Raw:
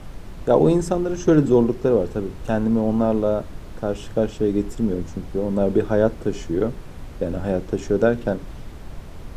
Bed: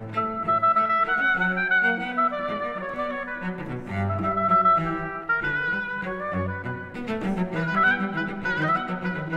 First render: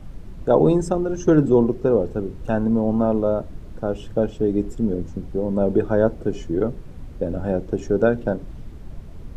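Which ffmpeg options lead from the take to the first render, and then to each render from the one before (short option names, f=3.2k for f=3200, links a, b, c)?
-af "afftdn=nr=9:nf=-37"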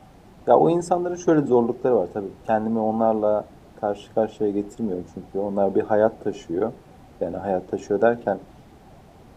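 -af "highpass=f=330:p=1,equalizer=f=770:t=o:w=0.33:g=11"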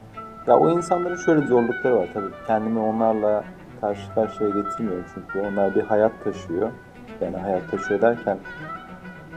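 -filter_complex "[1:a]volume=-11dB[a];[0:a][a]amix=inputs=2:normalize=0"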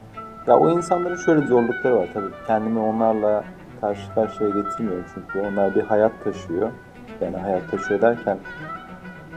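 -af "volume=1dB"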